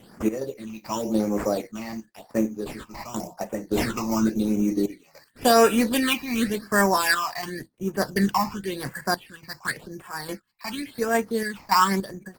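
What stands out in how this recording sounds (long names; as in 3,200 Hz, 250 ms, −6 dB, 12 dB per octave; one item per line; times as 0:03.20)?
aliases and images of a low sample rate 6,400 Hz, jitter 0%
sample-and-hold tremolo, depth 85%
phaser sweep stages 8, 0.92 Hz, lowest notch 430–4,100 Hz
Opus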